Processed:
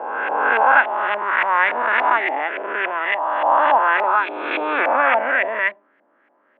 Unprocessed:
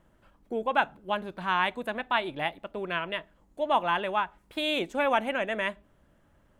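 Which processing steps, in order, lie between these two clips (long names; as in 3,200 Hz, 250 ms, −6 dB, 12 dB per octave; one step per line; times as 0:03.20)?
peak hold with a rise ahead of every peak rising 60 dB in 2.46 s
auto-filter low-pass saw up 3.5 Hz 720–2,200 Hz
Butterworth high-pass 260 Hz 36 dB per octave
parametric band 2,200 Hz +7.5 dB 0.9 octaves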